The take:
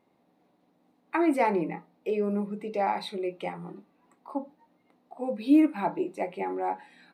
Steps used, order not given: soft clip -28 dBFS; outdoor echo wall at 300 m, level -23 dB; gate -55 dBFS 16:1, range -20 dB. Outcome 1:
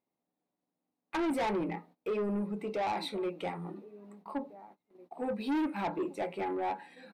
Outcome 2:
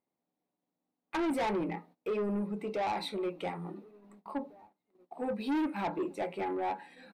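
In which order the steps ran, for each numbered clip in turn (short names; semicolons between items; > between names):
outdoor echo > soft clip > gate; soft clip > outdoor echo > gate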